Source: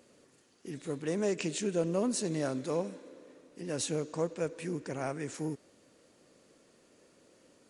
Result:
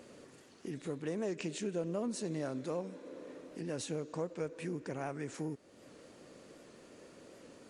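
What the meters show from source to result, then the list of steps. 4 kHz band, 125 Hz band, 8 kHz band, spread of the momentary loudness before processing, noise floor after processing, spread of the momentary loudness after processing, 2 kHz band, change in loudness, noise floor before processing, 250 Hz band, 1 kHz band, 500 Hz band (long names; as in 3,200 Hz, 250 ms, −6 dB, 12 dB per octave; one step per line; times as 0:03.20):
−6.5 dB, −4.0 dB, −8.5 dB, 15 LU, −60 dBFS, 19 LU, −4.5 dB, −5.5 dB, −65 dBFS, −4.0 dB, −4.0 dB, −5.0 dB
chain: downward compressor 2 to 1, threshold −53 dBFS, peak gain reduction 15 dB
high-shelf EQ 4,300 Hz −6.5 dB
wow of a warped record 78 rpm, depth 100 cents
level +8 dB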